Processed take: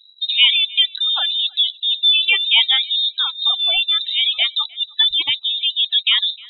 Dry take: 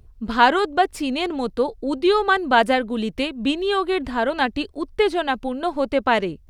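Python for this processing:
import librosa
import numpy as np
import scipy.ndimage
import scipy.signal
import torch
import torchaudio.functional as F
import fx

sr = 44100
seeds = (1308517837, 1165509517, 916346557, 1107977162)

p1 = fx.schmitt(x, sr, flips_db=-25.0)
p2 = x + (p1 * librosa.db_to_amplitude(-4.0))
p3 = fx.highpass(p2, sr, hz=89.0, slope=6)
p4 = fx.low_shelf(p3, sr, hz=200.0, db=4.0)
p5 = fx.freq_invert(p4, sr, carrier_hz=3900)
p6 = p5 + fx.echo_thinned(p5, sr, ms=307, feedback_pct=16, hz=340.0, wet_db=-24.0, dry=0)
y = fx.spec_gate(p6, sr, threshold_db=-20, keep='strong')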